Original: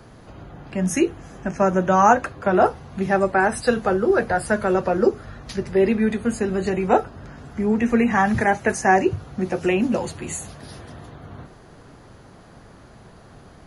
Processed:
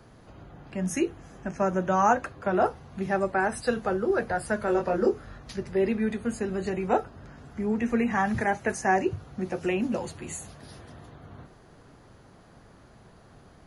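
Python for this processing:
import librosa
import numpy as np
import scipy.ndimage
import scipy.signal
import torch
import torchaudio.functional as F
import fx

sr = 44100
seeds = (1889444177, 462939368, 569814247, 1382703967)

y = fx.doubler(x, sr, ms=24.0, db=-4.5, at=(4.65, 5.38))
y = F.gain(torch.from_numpy(y), -7.0).numpy()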